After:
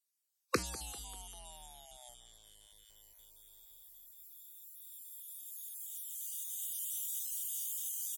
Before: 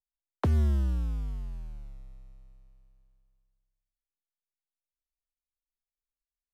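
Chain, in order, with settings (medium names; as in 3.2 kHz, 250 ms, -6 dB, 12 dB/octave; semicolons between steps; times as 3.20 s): random holes in the spectrogram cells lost 20%; recorder AGC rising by 6.7 dB/s; treble shelf 2.5 kHz +9 dB; compression 2:1, threshold -44 dBFS, peak gain reduction 11.5 dB; spectral noise reduction 17 dB; high-pass 120 Hz 12 dB/octave; tape speed -20%; tone controls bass -14 dB, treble +11 dB; feedback delay 197 ms, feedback 48%, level -19 dB; trim +10 dB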